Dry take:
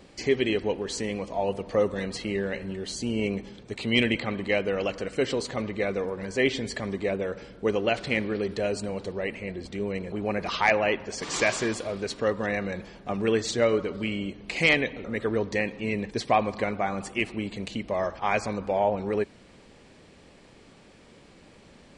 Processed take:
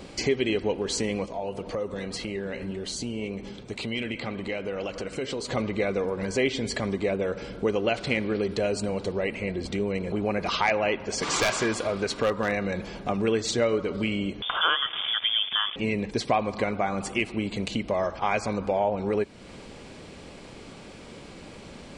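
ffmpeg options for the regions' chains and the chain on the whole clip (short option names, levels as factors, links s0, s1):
-filter_complex "[0:a]asettb=1/sr,asplit=3[s0][s1][s2];[s0]atrim=end=1.264[s3];[s1]atrim=start=1.26:end=5.51,asetpts=PTS-STARTPTS,afade=t=in:d=0.004:c=qsin,afade=t=out:st=4.246:d=0.004:c=qsin,acompressor=threshold=0.0178:ratio=2:attack=3.2:release=140:knee=1:detection=peak,flanger=delay=1.6:depth=6.3:regen=78:speed=1.9:shape=sinusoidal[s4];[s2]atrim=start=5.506[s5];[s3][s4]acrossfade=d=0.004:c1=hsin:c2=qsin[s6];[s6][s5]acrossfade=d=0.004:c1=qsin:c2=hsin,asettb=1/sr,asplit=3[s7][s8][s9];[s7]atrim=end=11.234[s10];[s8]atrim=start=11.23:end=12.54,asetpts=PTS-STARTPTS,afade=t=in:d=0.004:c=qsin,afade=t=out:st=1.306:d=0.004:c=qsin,equalizer=f=1300:t=o:w=1.6:g=5,aeval=exprs='0.168*(abs(mod(val(0)/0.168+3,4)-2)-1)':c=same[s11];[s9]atrim=start=12.536[s12];[s10][s11]acrossfade=d=0.004:c1=hsin:c2=qsin[s13];[s13][s12]acrossfade=d=0.004:c1=qsin:c2=hsin,asettb=1/sr,asplit=3[s14][s15][s16];[s14]atrim=end=14.424[s17];[s15]atrim=start=14.42:end=15.76,asetpts=PTS-STARTPTS,afade=t=in:d=0.004:c=qsin,afade=t=out:st=1.336:d=0.004:c=qsin,acrusher=bits=7:dc=4:mix=0:aa=0.000001,acompressor=mode=upward:threshold=0.0447:ratio=2.5:attack=3.2:release=140:knee=2.83:detection=peak,lowpass=f=3100:t=q:w=0.5098,lowpass=f=3100:t=q:w=0.6013,lowpass=f=3100:t=q:w=0.9,lowpass=f=3100:t=q:w=2.563,afreqshift=-3600[s18];[s16]atrim=start=15.756[s19];[s17][s18]acrossfade=d=0.004:c1=hsin:c2=qsin[s20];[s20][s19]acrossfade=d=0.004:c1=qsin:c2=hsin,bandreject=f=1800:w=12,acompressor=threshold=0.0126:ratio=2,volume=2.82"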